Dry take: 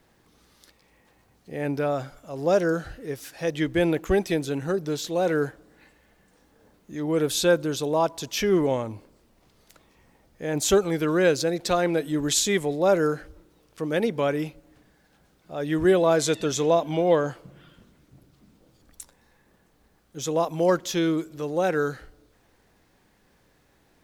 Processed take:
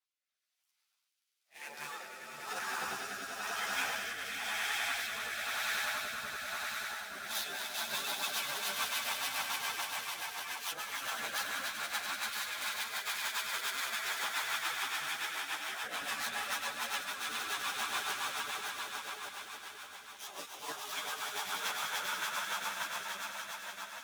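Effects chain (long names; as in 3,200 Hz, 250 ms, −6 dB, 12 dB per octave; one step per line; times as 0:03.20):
gap after every zero crossing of 0.059 ms
echo that builds up and dies away 97 ms, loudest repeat 8, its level −3 dB
gate on every frequency bin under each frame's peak −15 dB weak
compressor whose output falls as the input rises −28 dBFS, ratio −0.5
high-pass filter 1,200 Hz 6 dB per octave
noise gate −50 dBFS, range −15 dB
echo ahead of the sound 34 ms −12 dB
rotating-speaker cabinet horn 1 Hz, later 7 Hz, at 0:06.99
string-ensemble chorus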